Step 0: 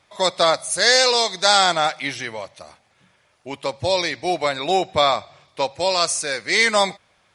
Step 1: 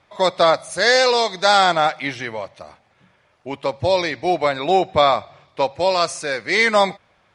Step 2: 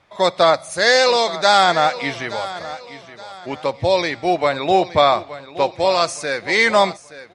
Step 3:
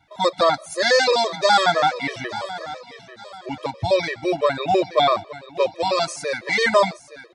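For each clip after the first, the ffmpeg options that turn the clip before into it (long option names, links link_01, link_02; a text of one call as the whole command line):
ffmpeg -i in.wav -af "aemphasis=mode=reproduction:type=75kf,volume=3.5dB" out.wav
ffmpeg -i in.wav -af "aecho=1:1:872|1744|2616:0.178|0.064|0.023,volume=1dB" out.wav
ffmpeg -i in.wav -af "afftfilt=real='re*gt(sin(2*PI*6*pts/sr)*(1-2*mod(floor(b*sr/1024/330),2)),0)':imag='im*gt(sin(2*PI*6*pts/sr)*(1-2*mod(floor(b*sr/1024/330),2)),0)':win_size=1024:overlap=0.75" out.wav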